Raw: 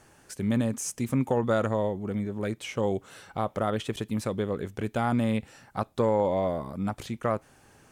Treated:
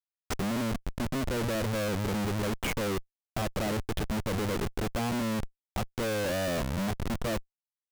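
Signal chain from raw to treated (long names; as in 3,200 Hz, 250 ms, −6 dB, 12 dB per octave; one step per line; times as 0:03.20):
treble cut that deepens with the level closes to 710 Hz, closed at −22.5 dBFS
comparator with hysteresis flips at −36 dBFS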